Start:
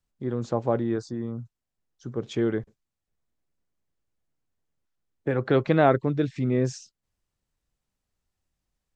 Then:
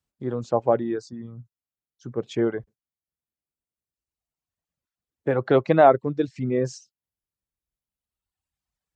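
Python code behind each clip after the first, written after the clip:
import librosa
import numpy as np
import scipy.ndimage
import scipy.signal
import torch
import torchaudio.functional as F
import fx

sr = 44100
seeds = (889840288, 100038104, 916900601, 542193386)

y = fx.dereverb_blind(x, sr, rt60_s=1.9)
y = scipy.signal.sosfilt(scipy.signal.butter(2, 56.0, 'highpass', fs=sr, output='sos'), y)
y = fx.dynamic_eq(y, sr, hz=690.0, q=0.87, threshold_db=-36.0, ratio=4.0, max_db=7)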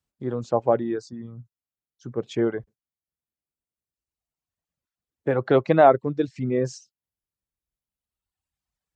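y = x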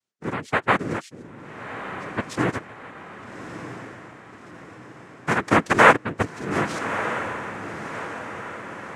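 y = fx.bass_treble(x, sr, bass_db=-10, treble_db=0)
y = fx.noise_vocoder(y, sr, seeds[0], bands=3)
y = fx.echo_diffused(y, sr, ms=1239, feedback_pct=53, wet_db=-10.0)
y = y * 10.0 ** (1.5 / 20.0)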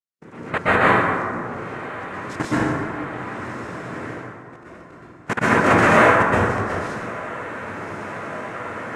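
y = fx.level_steps(x, sr, step_db=21)
y = fx.rev_plate(y, sr, seeds[1], rt60_s=2.1, hf_ratio=0.45, predelay_ms=110, drr_db=-10.0)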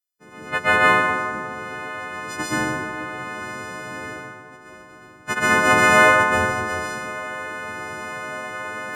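y = fx.freq_snap(x, sr, grid_st=3)
y = y * 10.0 ** (-3.5 / 20.0)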